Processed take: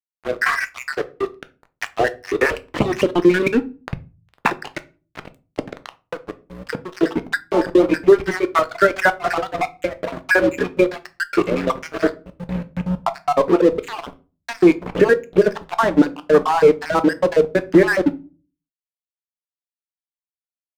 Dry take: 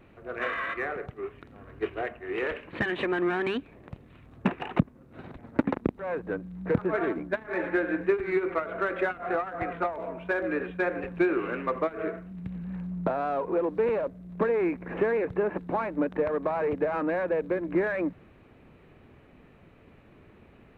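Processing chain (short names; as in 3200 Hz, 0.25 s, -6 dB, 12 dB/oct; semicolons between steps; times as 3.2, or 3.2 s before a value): random spectral dropouts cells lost 54%; reverb removal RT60 0.63 s; 4.54–7.01 compressor 5:1, threshold -41 dBFS, peak gain reduction 21 dB; crossover distortion -43 dBFS; shoebox room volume 140 m³, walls furnished, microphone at 0.43 m; maximiser +18 dB; mismatched tape noise reduction encoder only; gain -1 dB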